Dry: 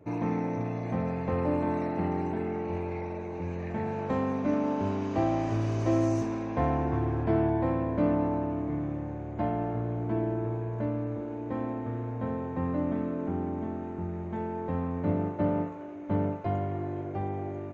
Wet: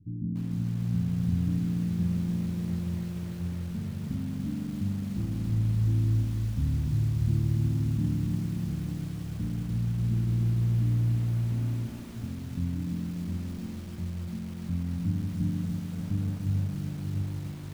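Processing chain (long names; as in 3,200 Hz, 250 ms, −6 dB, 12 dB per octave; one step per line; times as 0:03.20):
inverse Chebyshev low-pass filter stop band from 580 Hz, stop band 50 dB
low-shelf EQ 70 Hz +9 dB
feedback echo at a low word length 292 ms, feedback 80%, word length 8 bits, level −5 dB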